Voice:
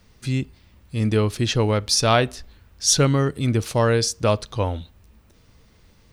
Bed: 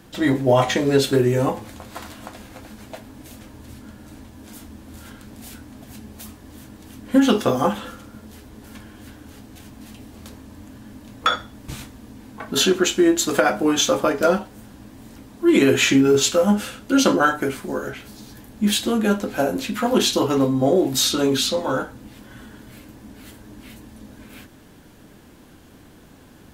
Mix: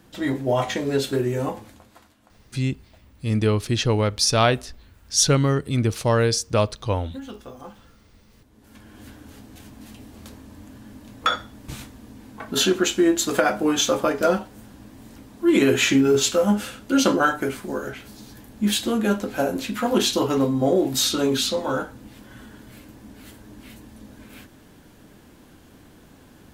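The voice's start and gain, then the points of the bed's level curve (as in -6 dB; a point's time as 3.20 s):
2.30 s, -0.5 dB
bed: 1.60 s -5.5 dB
2.14 s -21 dB
8.23 s -21 dB
8.99 s -2 dB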